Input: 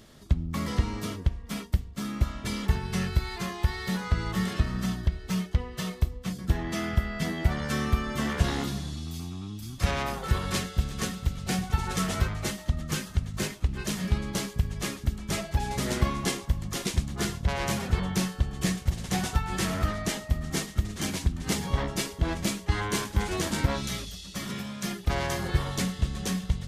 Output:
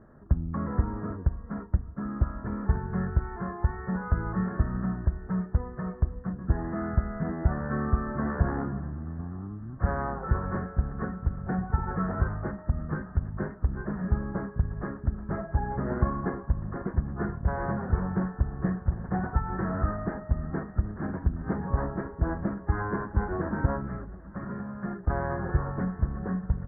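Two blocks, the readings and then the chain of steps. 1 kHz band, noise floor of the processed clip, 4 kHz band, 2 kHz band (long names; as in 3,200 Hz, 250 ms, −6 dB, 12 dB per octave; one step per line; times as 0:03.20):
0.0 dB, −44 dBFS, below −40 dB, −5.0 dB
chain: Butterworth low-pass 1,700 Hz 72 dB per octave
repeating echo 787 ms, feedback 54%, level −23 dB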